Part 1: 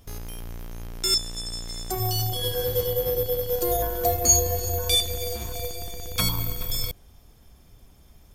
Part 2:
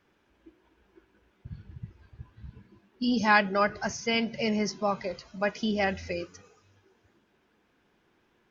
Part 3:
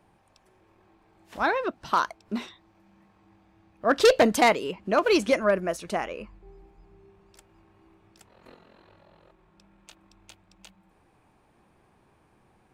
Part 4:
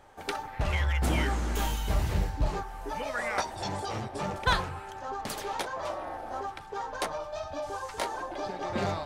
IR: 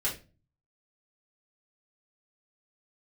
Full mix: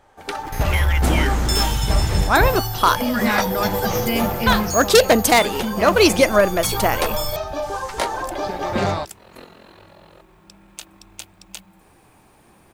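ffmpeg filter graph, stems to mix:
-filter_complex "[0:a]asoftclip=type=hard:threshold=-19dB,adelay=450,volume=-0.5dB[a];[1:a]bandreject=f=50:t=h:w=6,bandreject=f=100:t=h:w=6,bandreject=f=150:t=h:w=6,bandreject=f=200:t=h:w=6,asubboost=boost=5.5:cutoff=210,acrusher=bits=7:mix=0:aa=0.000001,volume=2.5dB[b];[2:a]aemphasis=mode=production:type=50kf,adelay=900,volume=0.5dB[c];[3:a]volume=0.5dB[d];[a][b]amix=inputs=2:normalize=0,acompressor=threshold=-35dB:ratio=2,volume=0dB[e];[c][d][e]amix=inputs=3:normalize=0,dynaudnorm=f=230:g=3:m=9dB"

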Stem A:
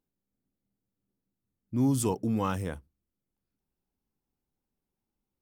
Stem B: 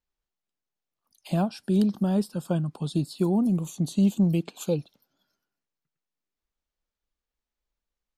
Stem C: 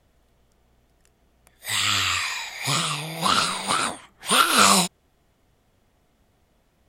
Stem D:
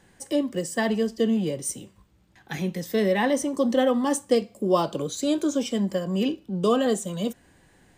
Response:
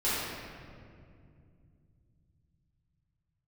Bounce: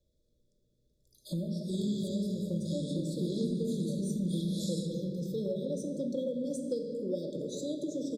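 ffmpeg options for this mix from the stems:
-filter_complex "[0:a]adelay=50,volume=-11dB[a];[1:a]volume=-4.5dB,asplit=2[b][c];[c]volume=-7dB[d];[2:a]lowpass=8.2k,volume=-14.5dB,asplit=2[e][f];[f]volume=-12dB[g];[3:a]highshelf=f=7.9k:g=-8.5,adelay=2400,volume=-5dB,asplit=2[h][i];[i]volume=-12.5dB[j];[4:a]atrim=start_sample=2205[k];[d][g][j]amix=inputs=3:normalize=0[l];[l][k]afir=irnorm=-1:irlink=0[m];[a][b][e][h][m]amix=inputs=5:normalize=0,afftfilt=real='re*(1-between(b*sr/4096,640,3300))':imag='im*(1-between(b*sr/4096,640,3300))':win_size=4096:overlap=0.75,acompressor=threshold=-39dB:ratio=2"

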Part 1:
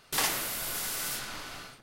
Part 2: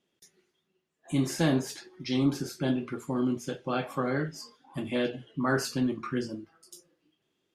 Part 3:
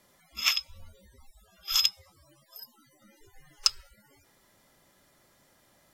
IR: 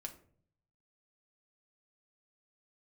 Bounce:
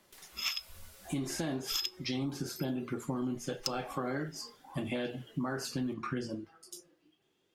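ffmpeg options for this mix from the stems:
-filter_complex "[0:a]highpass=280,acompressor=threshold=-38dB:ratio=6,aeval=exprs='clip(val(0),-1,0.00841)':c=same,volume=-15dB[a];[1:a]equalizer=f=770:w=5.9:g=4,volume=1.5dB[b];[2:a]acontrast=80,volume=-12.5dB,asplit=2[c][d];[d]volume=-7dB[e];[a][b]amix=inputs=2:normalize=0,aphaser=in_gain=1:out_gain=1:delay=3.2:decay=0.21:speed=0.36:type=triangular,alimiter=limit=-21.5dB:level=0:latency=1:release=322,volume=0dB[f];[3:a]atrim=start_sample=2205[g];[e][g]afir=irnorm=-1:irlink=0[h];[c][f][h]amix=inputs=3:normalize=0,acompressor=threshold=-31dB:ratio=5"

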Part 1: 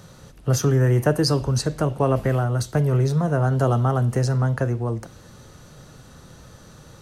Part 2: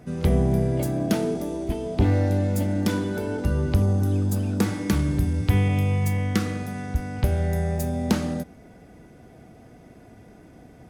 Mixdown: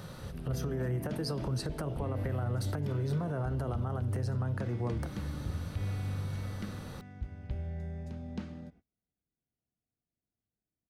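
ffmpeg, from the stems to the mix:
-filter_complex "[0:a]equalizer=f=6.7k:w=2.4:g=-10.5,acompressor=threshold=-25dB:ratio=6,alimiter=limit=-19dB:level=0:latency=1:release=449,volume=1dB,asplit=2[a][b];[1:a]agate=range=-29dB:threshold=-39dB:ratio=16:detection=peak,lowpass=3k,equalizer=f=740:w=0.3:g=-8.5,volume=-8dB,asplit=2[c][d];[d]volume=-5dB[e];[b]apad=whole_len=480322[f];[c][f]sidechaingate=range=-16dB:threshold=-36dB:ratio=16:detection=peak[g];[e]aecho=0:1:268:1[h];[a][g][h]amix=inputs=3:normalize=0,alimiter=level_in=1.5dB:limit=-24dB:level=0:latency=1:release=100,volume=-1.5dB"

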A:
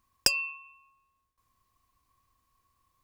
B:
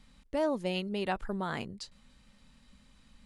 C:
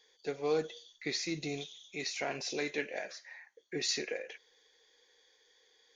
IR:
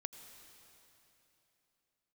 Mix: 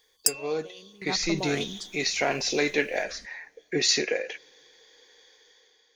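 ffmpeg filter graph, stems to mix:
-filter_complex "[0:a]highshelf=f=5.2k:t=q:w=1.5:g=13,volume=-9.5dB[a];[1:a]asplit=2[b][c];[c]afreqshift=-1.3[d];[b][d]amix=inputs=2:normalize=1,volume=-5.5dB,afade=t=in:st=0.76:d=0.61:silence=0.223872,asplit=2[e][f];[f]volume=-9dB[g];[2:a]volume=0dB,asplit=3[h][i][j];[i]volume=-21.5dB[k];[j]apad=whole_len=143713[l];[e][l]sidechaingate=range=-33dB:threshold=-54dB:ratio=16:detection=peak[m];[3:a]atrim=start_sample=2205[n];[g][k]amix=inputs=2:normalize=0[o];[o][n]afir=irnorm=-1:irlink=0[p];[a][m][h][p]amix=inputs=4:normalize=0,dynaudnorm=f=250:g=5:m=10dB"

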